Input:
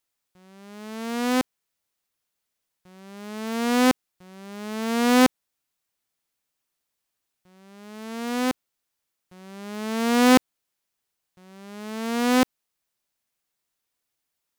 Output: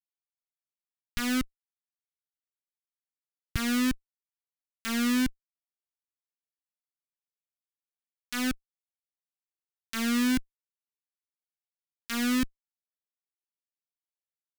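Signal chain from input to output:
comparator with hysteresis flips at −22.5 dBFS
flat-topped bell 620 Hz −15 dB
level +5 dB

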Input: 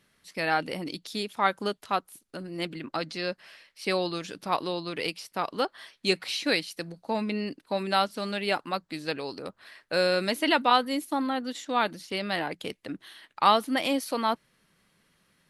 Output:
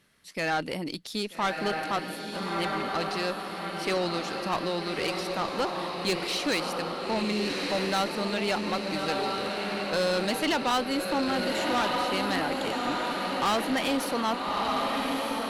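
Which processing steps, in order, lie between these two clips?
feedback delay with all-pass diffusion 1,267 ms, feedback 57%, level −4 dB
tube saturation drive 24 dB, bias 0.35
level +2.5 dB

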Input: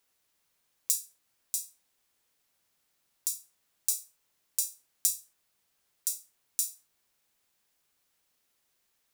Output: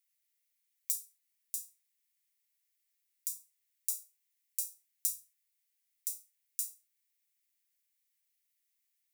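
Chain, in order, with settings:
high-pass with resonance 2,000 Hz, resonance Q 3.7
first difference
level −8.5 dB

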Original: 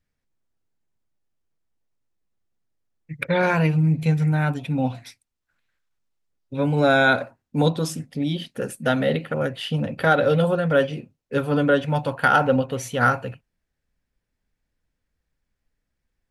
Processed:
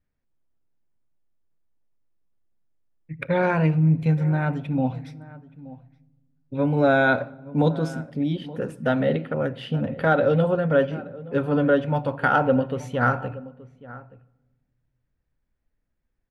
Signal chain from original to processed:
low-pass filter 1,400 Hz 6 dB per octave
slap from a distant wall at 150 metres, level −18 dB
on a send at −17.5 dB: convolution reverb RT60 1.2 s, pre-delay 3 ms

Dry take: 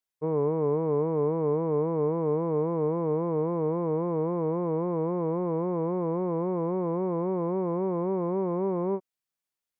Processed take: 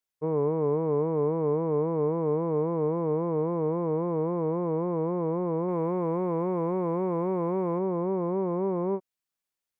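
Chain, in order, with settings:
0:05.68–0:07.79: high-shelf EQ 2,000 Hz +10.5 dB

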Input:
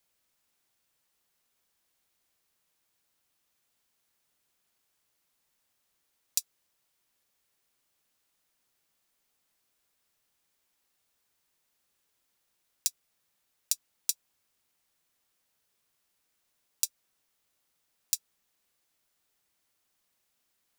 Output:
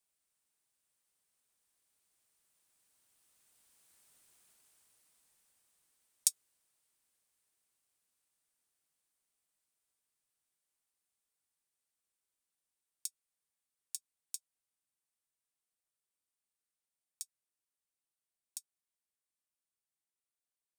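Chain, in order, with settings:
source passing by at 0:04.18, 16 m/s, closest 11 metres
parametric band 8,900 Hz +10 dB 0.52 octaves
level +5.5 dB

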